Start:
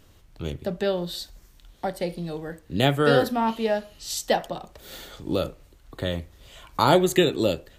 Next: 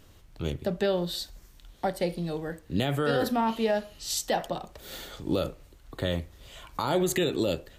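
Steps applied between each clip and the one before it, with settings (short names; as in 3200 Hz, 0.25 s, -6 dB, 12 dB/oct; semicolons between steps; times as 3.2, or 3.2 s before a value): limiter -16.5 dBFS, peak gain reduction 11.5 dB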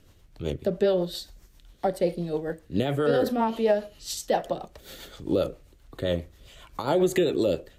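rotary speaker horn 7.5 Hz; dynamic EQ 500 Hz, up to +7 dB, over -41 dBFS, Q 0.78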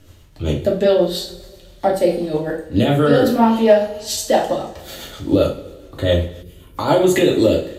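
two-slope reverb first 0.35 s, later 1.6 s, from -18 dB, DRR -2 dB; spectral gain 6.43–6.77, 490–9200 Hz -13 dB; gain +6 dB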